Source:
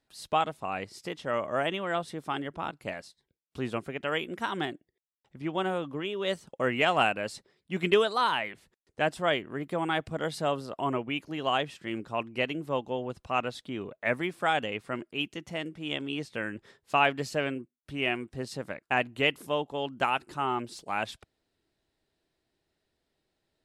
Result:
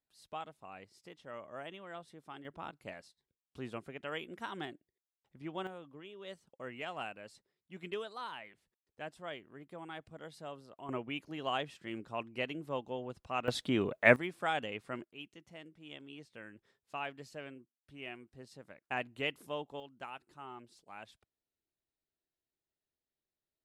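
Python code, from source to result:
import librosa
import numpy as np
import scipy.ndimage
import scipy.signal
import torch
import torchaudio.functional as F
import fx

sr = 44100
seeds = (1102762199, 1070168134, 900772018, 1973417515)

y = fx.gain(x, sr, db=fx.steps((0.0, -16.5), (2.45, -10.0), (5.67, -17.0), (10.89, -7.5), (13.48, 5.0), (14.16, -7.0), (15.04, -16.5), (18.84, -10.0), (19.8, -18.5)))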